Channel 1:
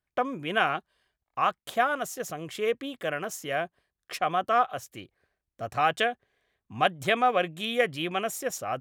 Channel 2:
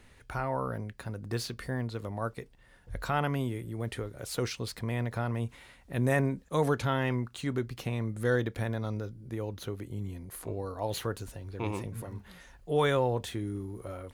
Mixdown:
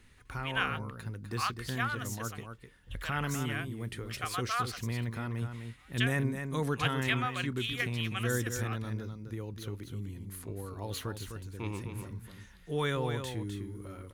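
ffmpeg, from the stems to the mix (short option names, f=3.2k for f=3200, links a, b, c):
-filter_complex "[0:a]highpass=960,volume=-3dB[a];[1:a]volume=-2dB,asplit=3[b][c][d];[c]volume=-7.5dB[e];[d]apad=whole_len=388284[f];[a][f]sidechaingate=range=-33dB:threshold=-45dB:ratio=16:detection=peak[g];[e]aecho=0:1:254:1[h];[g][b][h]amix=inputs=3:normalize=0,equalizer=f=650:t=o:w=0.98:g=-10.5"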